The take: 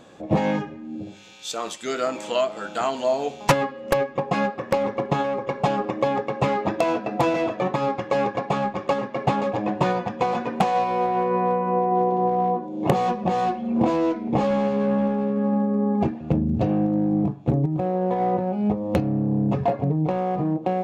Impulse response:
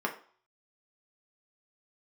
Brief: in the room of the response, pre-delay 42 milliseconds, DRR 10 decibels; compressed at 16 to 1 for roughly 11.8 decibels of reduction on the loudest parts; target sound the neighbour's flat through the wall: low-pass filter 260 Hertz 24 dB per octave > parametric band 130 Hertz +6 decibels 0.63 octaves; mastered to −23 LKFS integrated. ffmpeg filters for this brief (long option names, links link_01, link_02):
-filter_complex "[0:a]acompressor=threshold=-27dB:ratio=16,asplit=2[link_01][link_02];[1:a]atrim=start_sample=2205,adelay=42[link_03];[link_02][link_03]afir=irnorm=-1:irlink=0,volume=-17.5dB[link_04];[link_01][link_04]amix=inputs=2:normalize=0,lowpass=frequency=260:width=0.5412,lowpass=frequency=260:width=1.3066,equalizer=frequency=130:width_type=o:width=0.63:gain=6,volume=13dB"